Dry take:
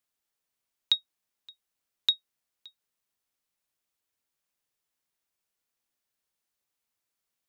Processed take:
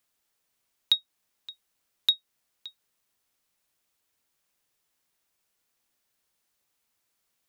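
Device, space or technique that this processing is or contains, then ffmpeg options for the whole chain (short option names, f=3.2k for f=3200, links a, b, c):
clipper into limiter: -af "asoftclip=type=hard:threshold=-14.5dB,alimiter=limit=-20dB:level=0:latency=1:release=276,volume=7.5dB"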